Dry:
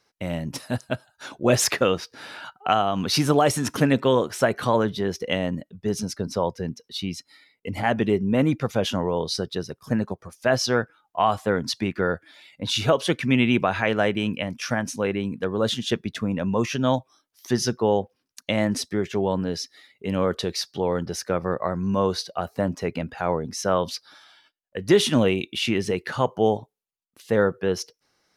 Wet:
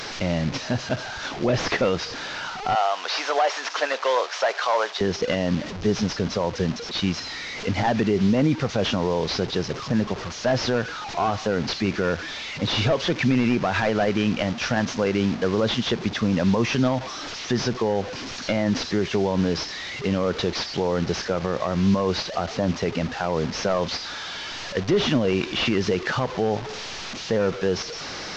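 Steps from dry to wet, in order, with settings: one-bit delta coder 32 kbps, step -33 dBFS; 2.75–5.01 s: high-pass 600 Hz 24 dB/octave; peak limiter -18 dBFS, peak gain reduction 11 dB; trim +6 dB

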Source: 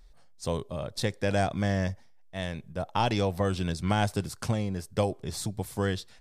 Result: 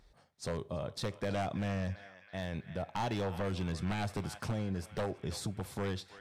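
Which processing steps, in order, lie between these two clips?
high-pass 66 Hz 12 dB/octave; in parallel at 0 dB: compression, threshold -35 dBFS, peak gain reduction 14 dB; on the sum: band-passed feedback delay 327 ms, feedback 74%, band-pass 2.1 kHz, level -15.5 dB; wavefolder -18.5 dBFS; on a send at -19 dB: reverberation RT60 0.30 s, pre-delay 6 ms; on the sum: peak limiter -22 dBFS, peak gain reduction 4.5 dB; treble shelf 5.1 kHz -9 dB; trim -4.5 dB

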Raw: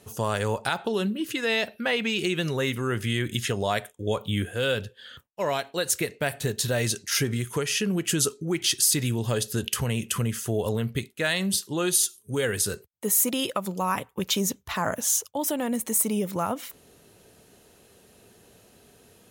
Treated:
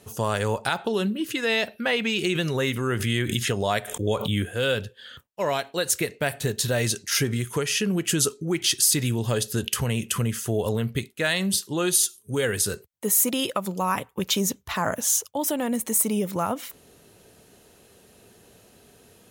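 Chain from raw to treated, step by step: 2.29–4.45 s: swell ahead of each attack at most 68 dB/s; trim +1.5 dB

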